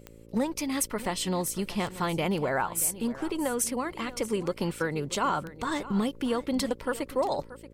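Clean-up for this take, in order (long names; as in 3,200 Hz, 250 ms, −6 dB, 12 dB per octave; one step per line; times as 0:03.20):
click removal
hum removal 56.1 Hz, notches 10
echo removal 631 ms −16 dB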